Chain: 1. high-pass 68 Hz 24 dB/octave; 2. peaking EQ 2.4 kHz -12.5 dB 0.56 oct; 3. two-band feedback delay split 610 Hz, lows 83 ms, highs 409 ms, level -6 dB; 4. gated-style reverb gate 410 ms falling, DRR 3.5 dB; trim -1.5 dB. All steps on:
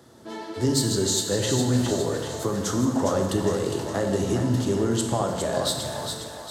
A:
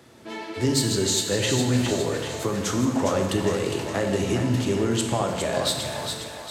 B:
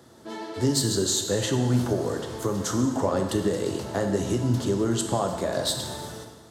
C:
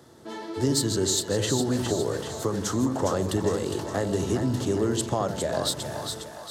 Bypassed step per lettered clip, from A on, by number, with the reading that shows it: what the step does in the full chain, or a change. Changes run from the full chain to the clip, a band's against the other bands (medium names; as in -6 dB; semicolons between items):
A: 2, 2 kHz band +4.5 dB; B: 3, echo-to-direct 0.0 dB to -3.5 dB; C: 4, echo-to-direct 0.0 dB to -4.5 dB